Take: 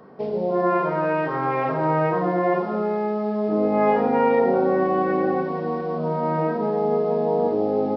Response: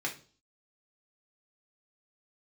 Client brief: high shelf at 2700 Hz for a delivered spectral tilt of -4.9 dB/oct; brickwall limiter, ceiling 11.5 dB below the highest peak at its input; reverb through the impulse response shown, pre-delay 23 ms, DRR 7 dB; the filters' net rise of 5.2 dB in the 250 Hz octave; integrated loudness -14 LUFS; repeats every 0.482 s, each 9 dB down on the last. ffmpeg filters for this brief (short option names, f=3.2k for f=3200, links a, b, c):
-filter_complex "[0:a]equalizer=f=250:t=o:g=7,highshelf=f=2.7k:g=-8,alimiter=limit=-17.5dB:level=0:latency=1,aecho=1:1:482|964|1446|1928:0.355|0.124|0.0435|0.0152,asplit=2[a][b];[1:a]atrim=start_sample=2205,adelay=23[c];[b][c]afir=irnorm=-1:irlink=0,volume=-11.5dB[d];[a][d]amix=inputs=2:normalize=0,volume=11dB"